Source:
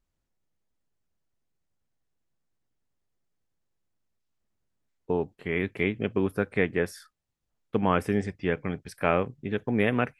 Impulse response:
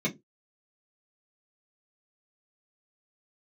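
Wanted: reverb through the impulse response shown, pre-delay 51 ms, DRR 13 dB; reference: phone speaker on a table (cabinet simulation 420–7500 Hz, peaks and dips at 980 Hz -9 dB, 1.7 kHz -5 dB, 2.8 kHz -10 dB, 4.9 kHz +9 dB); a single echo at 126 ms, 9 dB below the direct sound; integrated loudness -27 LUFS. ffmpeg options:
-filter_complex "[0:a]aecho=1:1:126:0.355,asplit=2[s0][s1];[1:a]atrim=start_sample=2205,adelay=51[s2];[s1][s2]afir=irnorm=-1:irlink=0,volume=0.0891[s3];[s0][s3]amix=inputs=2:normalize=0,highpass=f=420:w=0.5412,highpass=f=420:w=1.3066,equalizer=f=980:t=q:w=4:g=-9,equalizer=f=1700:t=q:w=4:g=-5,equalizer=f=2800:t=q:w=4:g=-10,equalizer=f=4900:t=q:w=4:g=9,lowpass=f=7500:w=0.5412,lowpass=f=7500:w=1.3066,volume=1.88"

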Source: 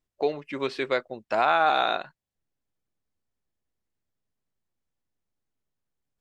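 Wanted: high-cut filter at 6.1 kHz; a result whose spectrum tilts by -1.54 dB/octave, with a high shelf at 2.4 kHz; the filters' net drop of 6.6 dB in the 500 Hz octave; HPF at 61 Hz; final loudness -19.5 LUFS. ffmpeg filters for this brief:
-af "highpass=61,lowpass=6100,equalizer=f=500:t=o:g=-8.5,highshelf=f=2400:g=-8,volume=3.35"

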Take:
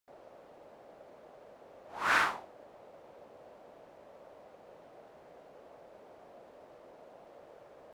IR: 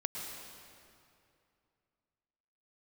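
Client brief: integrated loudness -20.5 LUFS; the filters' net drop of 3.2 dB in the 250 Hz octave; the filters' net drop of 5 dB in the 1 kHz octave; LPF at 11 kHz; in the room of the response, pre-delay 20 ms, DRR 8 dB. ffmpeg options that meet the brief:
-filter_complex "[0:a]lowpass=11000,equalizer=f=250:t=o:g=-4,equalizer=f=1000:t=o:g=-6.5,asplit=2[s0][s1];[1:a]atrim=start_sample=2205,adelay=20[s2];[s1][s2]afir=irnorm=-1:irlink=0,volume=0.316[s3];[s0][s3]amix=inputs=2:normalize=0,volume=5.01"

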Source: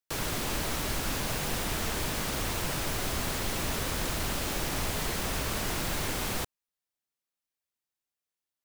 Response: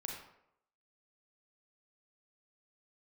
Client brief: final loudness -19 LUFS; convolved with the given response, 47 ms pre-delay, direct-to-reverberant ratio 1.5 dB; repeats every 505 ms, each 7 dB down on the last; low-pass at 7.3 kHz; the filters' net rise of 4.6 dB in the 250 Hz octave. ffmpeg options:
-filter_complex "[0:a]lowpass=7300,equalizer=f=250:t=o:g=6,aecho=1:1:505|1010|1515|2020|2525:0.447|0.201|0.0905|0.0407|0.0183,asplit=2[s0][s1];[1:a]atrim=start_sample=2205,adelay=47[s2];[s1][s2]afir=irnorm=-1:irlink=0,volume=0.944[s3];[s0][s3]amix=inputs=2:normalize=0,volume=2.99"

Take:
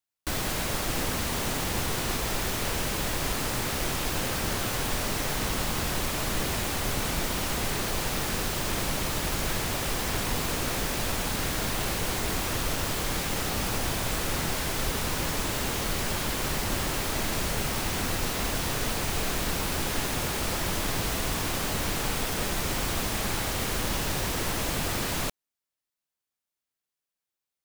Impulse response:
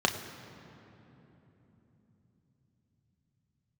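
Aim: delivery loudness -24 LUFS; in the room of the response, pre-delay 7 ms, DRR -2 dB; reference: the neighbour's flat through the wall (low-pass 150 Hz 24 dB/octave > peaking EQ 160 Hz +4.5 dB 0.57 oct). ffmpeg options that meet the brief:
-filter_complex "[0:a]asplit=2[s0][s1];[1:a]atrim=start_sample=2205,adelay=7[s2];[s1][s2]afir=irnorm=-1:irlink=0,volume=0.335[s3];[s0][s3]amix=inputs=2:normalize=0,lowpass=f=150:w=0.5412,lowpass=f=150:w=1.3066,equalizer=f=160:t=o:w=0.57:g=4.5,volume=2.82"

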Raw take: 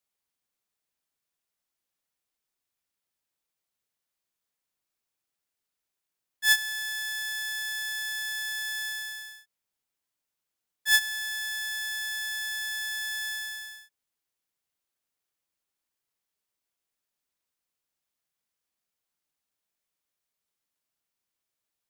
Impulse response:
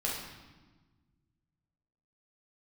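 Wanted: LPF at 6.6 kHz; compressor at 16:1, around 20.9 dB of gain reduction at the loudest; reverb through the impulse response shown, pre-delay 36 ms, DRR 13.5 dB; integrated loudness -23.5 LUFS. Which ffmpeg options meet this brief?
-filter_complex "[0:a]lowpass=6600,acompressor=threshold=0.0112:ratio=16,asplit=2[s0][s1];[1:a]atrim=start_sample=2205,adelay=36[s2];[s1][s2]afir=irnorm=-1:irlink=0,volume=0.112[s3];[s0][s3]amix=inputs=2:normalize=0,volume=7.08"

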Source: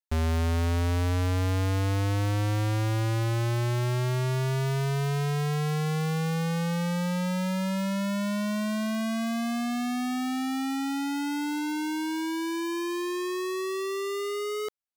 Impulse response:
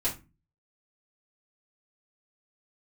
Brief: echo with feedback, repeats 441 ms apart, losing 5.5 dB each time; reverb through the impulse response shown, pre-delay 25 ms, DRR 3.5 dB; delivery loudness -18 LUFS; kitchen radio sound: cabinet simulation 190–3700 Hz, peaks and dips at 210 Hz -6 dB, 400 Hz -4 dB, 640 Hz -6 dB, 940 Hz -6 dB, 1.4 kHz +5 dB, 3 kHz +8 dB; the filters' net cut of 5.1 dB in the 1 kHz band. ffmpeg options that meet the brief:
-filter_complex "[0:a]equalizer=f=1000:t=o:g=-4.5,aecho=1:1:441|882|1323|1764|2205|2646|3087:0.531|0.281|0.149|0.079|0.0419|0.0222|0.0118,asplit=2[s0][s1];[1:a]atrim=start_sample=2205,adelay=25[s2];[s1][s2]afir=irnorm=-1:irlink=0,volume=0.316[s3];[s0][s3]amix=inputs=2:normalize=0,highpass=190,equalizer=f=210:t=q:w=4:g=-6,equalizer=f=400:t=q:w=4:g=-4,equalizer=f=640:t=q:w=4:g=-6,equalizer=f=940:t=q:w=4:g=-6,equalizer=f=1400:t=q:w=4:g=5,equalizer=f=3000:t=q:w=4:g=8,lowpass=f=3700:w=0.5412,lowpass=f=3700:w=1.3066,volume=3.76"

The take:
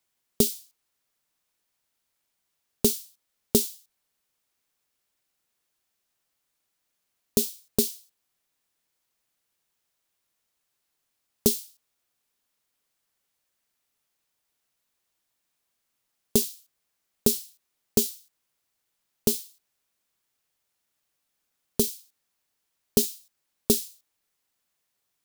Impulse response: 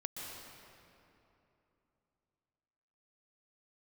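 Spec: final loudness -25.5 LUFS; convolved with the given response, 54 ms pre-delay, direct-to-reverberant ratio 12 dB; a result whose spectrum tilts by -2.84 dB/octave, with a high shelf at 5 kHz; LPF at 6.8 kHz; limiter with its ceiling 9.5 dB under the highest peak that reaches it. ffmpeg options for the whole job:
-filter_complex "[0:a]lowpass=6800,highshelf=f=5000:g=6.5,alimiter=limit=0.188:level=0:latency=1,asplit=2[s0][s1];[1:a]atrim=start_sample=2205,adelay=54[s2];[s1][s2]afir=irnorm=-1:irlink=0,volume=0.251[s3];[s0][s3]amix=inputs=2:normalize=0,volume=2.66"

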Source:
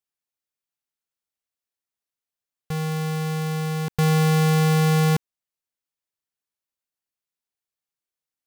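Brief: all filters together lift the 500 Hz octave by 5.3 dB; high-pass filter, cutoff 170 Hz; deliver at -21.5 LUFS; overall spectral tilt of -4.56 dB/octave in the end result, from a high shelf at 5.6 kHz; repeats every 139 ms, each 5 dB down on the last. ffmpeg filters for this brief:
-af "highpass=170,equalizer=f=500:t=o:g=5.5,highshelf=f=5600:g=7.5,aecho=1:1:139|278|417|556|695|834|973:0.562|0.315|0.176|0.0988|0.0553|0.031|0.0173"

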